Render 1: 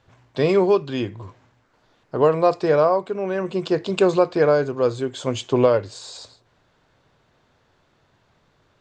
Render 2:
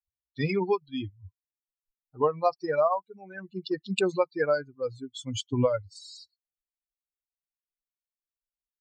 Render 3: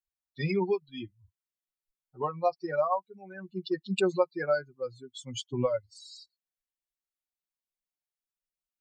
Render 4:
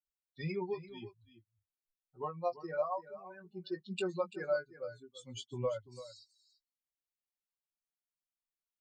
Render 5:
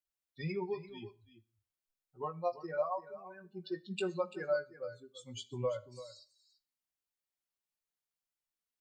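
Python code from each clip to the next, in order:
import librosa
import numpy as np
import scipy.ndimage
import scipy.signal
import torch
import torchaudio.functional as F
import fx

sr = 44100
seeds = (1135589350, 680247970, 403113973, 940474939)

y1 = fx.bin_expand(x, sr, power=3.0)
y1 = fx.notch(y1, sr, hz=5900.0, q=15.0)
y1 = fx.dynamic_eq(y1, sr, hz=390.0, q=0.81, threshold_db=-33.0, ratio=4.0, max_db=-6)
y1 = F.gain(torch.from_numpy(y1), 1.5).numpy()
y2 = y1 + 0.79 * np.pad(y1, (int(5.4 * sr / 1000.0), 0))[:len(y1)]
y2 = F.gain(torch.from_numpy(y2), -5.0).numpy()
y3 = fx.chorus_voices(y2, sr, voices=4, hz=0.68, base_ms=18, depth_ms=1.1, mix_pct=30)
y3 = y3 + 10.0 ** (-14.5 / 20.0) * np.pad(y3, (int(339 * sr / 1000.0), 0))[:len(y3)]
y3 = F.gain(torch.from_numpy(y3), -6.0).numpy()
y4 = fx.rev_schroeder(y3, sr, rt60_s=0.43, comb_ms=28, drr_db=18.5)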